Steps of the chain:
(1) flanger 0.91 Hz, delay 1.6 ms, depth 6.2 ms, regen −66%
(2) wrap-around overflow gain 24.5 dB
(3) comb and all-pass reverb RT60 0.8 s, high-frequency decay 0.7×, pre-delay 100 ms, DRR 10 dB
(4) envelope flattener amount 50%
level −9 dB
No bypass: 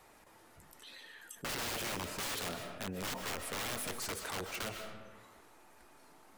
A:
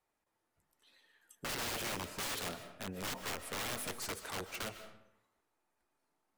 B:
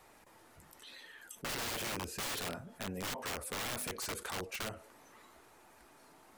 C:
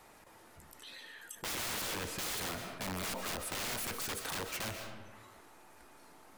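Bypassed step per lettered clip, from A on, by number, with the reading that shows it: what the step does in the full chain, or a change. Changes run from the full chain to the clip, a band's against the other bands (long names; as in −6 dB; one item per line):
4, change in momentary loudness spread −8 LU
3, change in momentary loudness spread +3 LU
1, change in momentary loudness spread +3 LU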